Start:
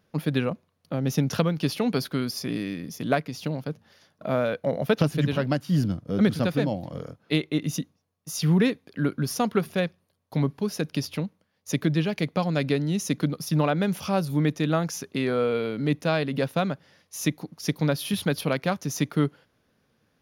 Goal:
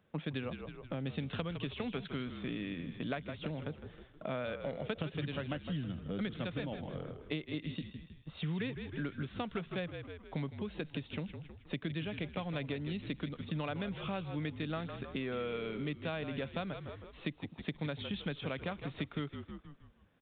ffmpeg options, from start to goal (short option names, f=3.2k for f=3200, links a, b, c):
-filter_complex "[0:a]asplit=6[a][b][c][d][e][f];[b]adelay=158,afreqshift=-46,volume=-12dB[g];[c]adelay=316,afreqshift=-92,volume=-18.9dB[h];[d]adelay=474,afreqshift=-138,volume=-25.9dB[i];[e]adelay=632,afreqshift=-184,volume=-32.8dB[j];[f]adelay=790,afreqshift=-230,volume=-39.7dB[k];[a][g][h][i][j][k]amix=inputs=6:normalize=0,aresample=8000,aresample=44100,acrossover=split=90|1900[l][m][n];[l]acompressor=threshold=-53dB:ratio=4[o];[m]acompressor=threshold=-34dB:ratio=4[p];[n]acompressor=threshold=-41dB:ratio=4[q];[o][p][q]amix=inputs=3:normalize=0,volume=-3.5dB"